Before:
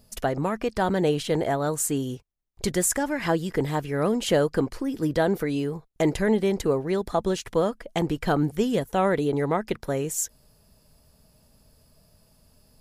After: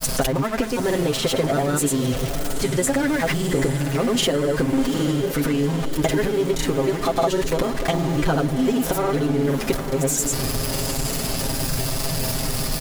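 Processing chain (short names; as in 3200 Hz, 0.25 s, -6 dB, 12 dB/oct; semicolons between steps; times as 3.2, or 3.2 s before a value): zero-crossing step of -27.5 dBFS; comb 7.5 ms, depth 77%; compressor, threshold -26 dBFS, peak gain reduction 12 dB; grains, pitch spread up and down by 0 st; on a send: diffused feedback echo 0.806 s, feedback 55%, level -10 dB; on the sum: gain +8.5 dB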